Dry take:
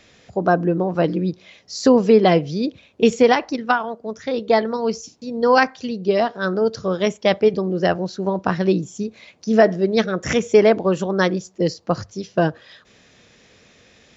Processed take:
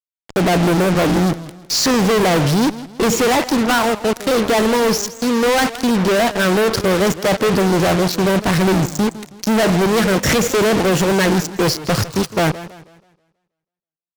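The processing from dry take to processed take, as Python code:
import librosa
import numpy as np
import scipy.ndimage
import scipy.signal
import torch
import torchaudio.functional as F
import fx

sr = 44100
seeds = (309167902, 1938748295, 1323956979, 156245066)

y = fx.fuzz(x, sr, gain_db=42.0, gate_db=-35.0)
y = fx.echo_warbled(y, sr, ms=161, feedback_pct=38, rate_hz=2.8, cents=196, wet_db=-15.5)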